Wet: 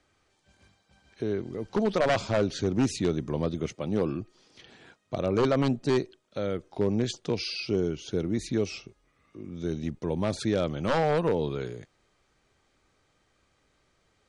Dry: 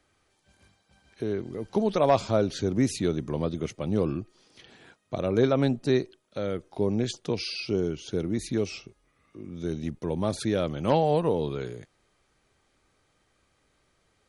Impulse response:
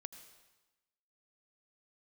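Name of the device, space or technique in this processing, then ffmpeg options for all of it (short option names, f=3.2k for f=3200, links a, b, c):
synthesiser wavefolder: -filter_complex "[0:a]asettb=1/sr,asplit=3[a][b][c];[a]atrim=end=3.724[d];[b]atrim=start=3.72:end=4.2,asetpts=PTS-STARTPTS,afade=t=in:d=0.004:c=qsin,afade=t=out:st=0.476:d=0.004:c=qsin,highpass=f=140:p=1[e];[c]atrim=start=4.196[f];[d][e]acrossfade=d=0.004:c1=hsin:c2=qsin[g];[g][f]acrossfade=d=0.004:c1=qsin:c2=hsin,aeval=exprs='0.15*(abs(mod(val(0)/0.15+3,4)-2)-1)':c=same,lowpass=f=8.5k:w=0.5412,lowpass=f=8.5k:w=1.3066"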